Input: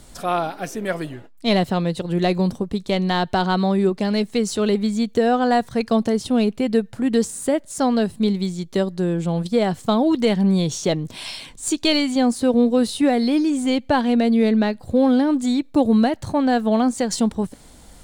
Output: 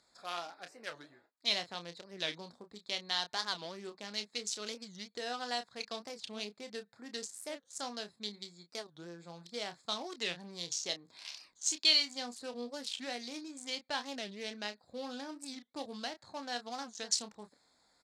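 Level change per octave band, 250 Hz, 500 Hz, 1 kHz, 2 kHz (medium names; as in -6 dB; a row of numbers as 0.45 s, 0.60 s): -30.0 dB, -23.5 dB, -19.5 dB, -12.0 dB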